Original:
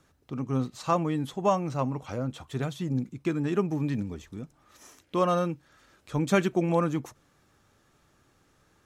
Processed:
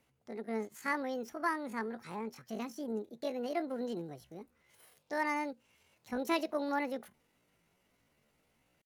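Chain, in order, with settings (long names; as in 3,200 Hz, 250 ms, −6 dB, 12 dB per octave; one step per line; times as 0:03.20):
pitch shifter +9 semitones
level −9 dB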